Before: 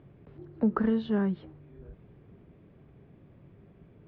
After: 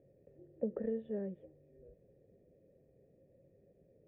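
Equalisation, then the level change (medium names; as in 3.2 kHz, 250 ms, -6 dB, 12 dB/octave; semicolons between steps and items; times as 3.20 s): cascade formant filter e; high-order bell 1.5 kHz -12 dB; +4.0 dB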